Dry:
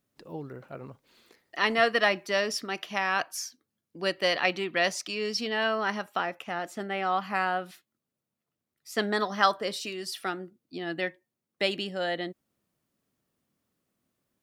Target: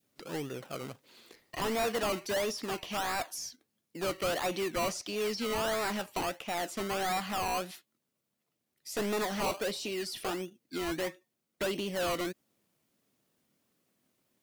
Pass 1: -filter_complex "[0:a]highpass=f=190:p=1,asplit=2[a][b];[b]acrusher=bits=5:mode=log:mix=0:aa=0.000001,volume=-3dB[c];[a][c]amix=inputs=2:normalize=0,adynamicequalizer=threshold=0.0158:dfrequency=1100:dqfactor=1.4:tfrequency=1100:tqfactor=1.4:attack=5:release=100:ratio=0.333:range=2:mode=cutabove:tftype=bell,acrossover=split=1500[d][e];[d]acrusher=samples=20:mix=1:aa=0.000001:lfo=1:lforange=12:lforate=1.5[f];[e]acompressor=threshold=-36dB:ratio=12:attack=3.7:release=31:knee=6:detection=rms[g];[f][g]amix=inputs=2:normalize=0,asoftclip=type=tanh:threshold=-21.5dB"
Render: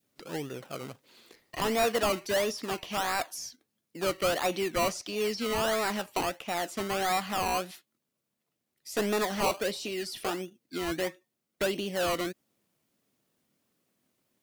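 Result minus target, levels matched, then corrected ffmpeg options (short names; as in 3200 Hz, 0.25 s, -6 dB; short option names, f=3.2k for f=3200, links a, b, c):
soft clip: distortion -5 dB
-filter_complex "[0:a]highpass=f=190:p=1,asplit=2[a][b];[b]acrusher=bits=5:mode=log:mix=0:aa=0.000001,volume=-3dB[c];[a][c]amix=inputs=2:normalize=0,adynamicequalizer=threshold=0.0158:dfrequency=1100:dqfactor=1.4:tfrequency=1100:tqfactor=1.4:attack=5:release=100:ratio=0.333:range=2:mode=cutabove:tftype=bell,acrossover=split=1500[d][e];[d]acrusher=samples=20:mix=1:aa=0.000001:lfo=1:lforange=12:lforate=1.5[f];[e]acompressor=threshold=-36dB:ratio=12:attack=3.7:release=31:knee=6:detection=rms[g];[f][g]amix=inputs=2:normalize=0,asoftclip=type=tanh:threshold=-28dB"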